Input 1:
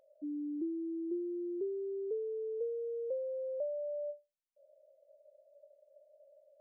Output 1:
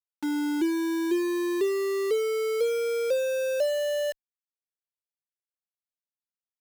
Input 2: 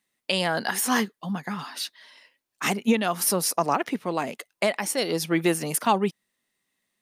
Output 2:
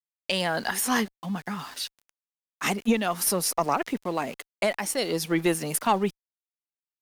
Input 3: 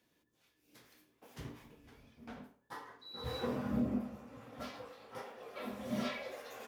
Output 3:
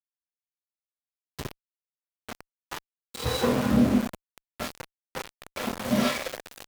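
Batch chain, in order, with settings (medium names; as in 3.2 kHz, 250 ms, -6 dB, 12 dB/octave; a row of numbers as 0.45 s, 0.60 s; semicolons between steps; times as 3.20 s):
small samples zeroed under -41 dBFS; Chebyshev shaper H 2 -19 dB, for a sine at -10 dBFS; normalise loudness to -27 LUFS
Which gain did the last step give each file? +11.5 dB, -1.0 dB, +13.0 dB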